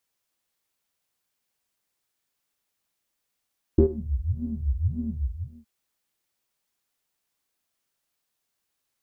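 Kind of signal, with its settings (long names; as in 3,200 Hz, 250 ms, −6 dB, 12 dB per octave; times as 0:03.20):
subtractive patch with filter wobble D#2, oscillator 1 square, filter lowpass, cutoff 110 Hz, Q 11, filter envelope 1.5 octaves, filter decay 0.20 s, filter sustain 10%, attack 5.8 ms, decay 0.09 s, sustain −22 dB, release 0.60 s, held 1.27 s, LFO 1.8 Hz, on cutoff 1.1 octaves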